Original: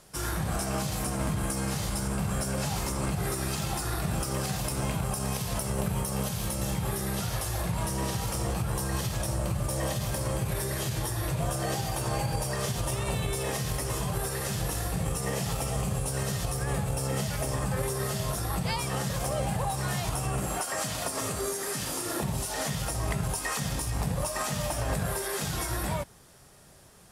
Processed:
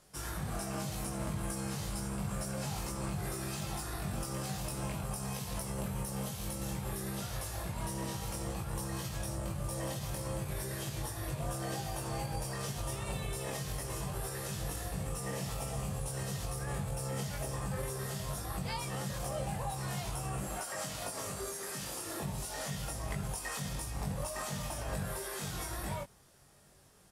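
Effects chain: doubler 21 ms -4 dB; gain -9 dB

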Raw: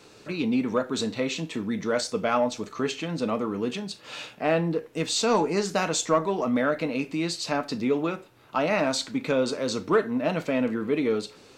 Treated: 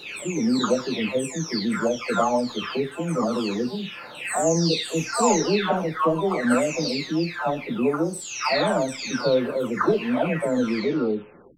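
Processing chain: spectral delay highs early, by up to 0.801 s; gain +5 dB

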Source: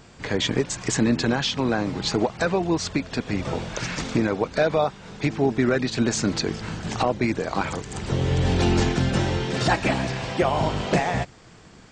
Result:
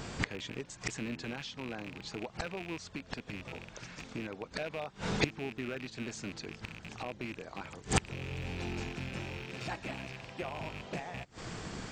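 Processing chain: rattling part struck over -28 dBFS, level -14 dBFS; flipped gate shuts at -21 dBFS, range -25 dB; gain +6.5 dB

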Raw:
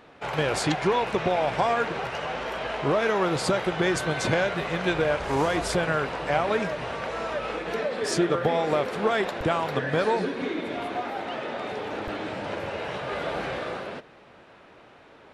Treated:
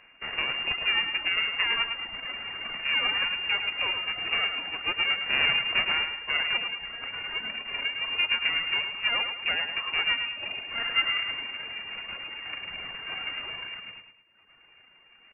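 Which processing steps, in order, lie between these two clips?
5.26–6.06 half-waves squared off; reverb removal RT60 1.1 s; HPF 300 Hz 12 dB/oct; reverb removal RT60 1.5 s; 10.71–11.3 bell 1400 Hz -> 450 Hz +10.5 dB 1.4 oct; half-wave rectifier; feedback echo 0.107 s, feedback 40%, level -7.5 dB; inverted band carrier 2800 Hz

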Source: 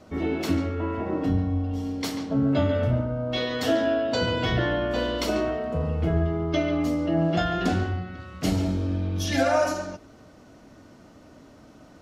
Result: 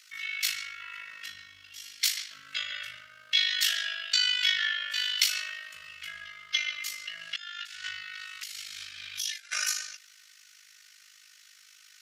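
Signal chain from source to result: tilt +2 dB/oct; 7.36–9.52 negative-ratio compressor -32 dBFS, ratio -0.5; AM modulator 51 Hz, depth 50%; inverse Chebyshev high-pass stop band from 900 Hz, stop band 40 dB; gain +7.5 dB

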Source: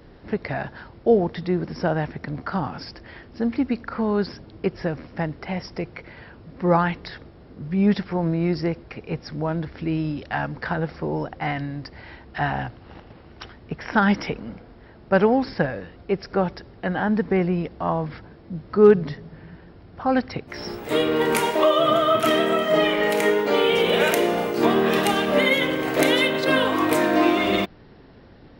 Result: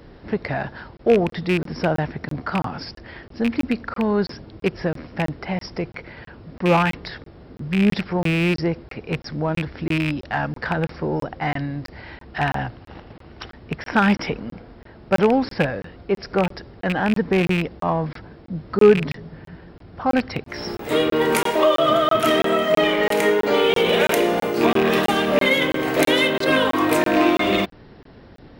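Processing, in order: rattling part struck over -24 dBFS, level -16 dBFS; in parallel at -7 dB: soft clip -22 dBFS, distortion -8 dB; on the sum: crackling interface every 0.33 s, samples 1024, zero, from 0.97

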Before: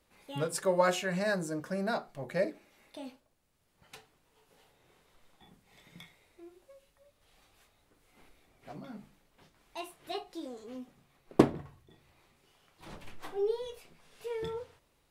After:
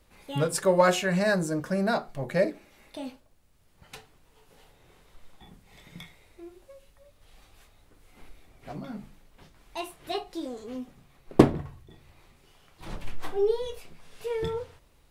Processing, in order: low shelf 87 Hz +11.5 dB; in parallel at -10 dB: hard clip -20 dBFS, distortion -9 dB; on the sum: gain +3.5 dB

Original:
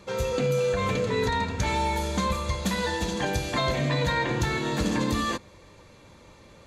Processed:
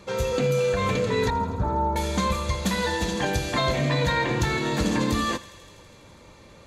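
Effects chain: 1.3–1.96 steep low-pass 1400 Hz 48 dB/oct; on a send: thinning echo 82 ms, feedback 82%, high-pass 1100 Hz, level -16.5 dB; on the sum: gain +2 dB

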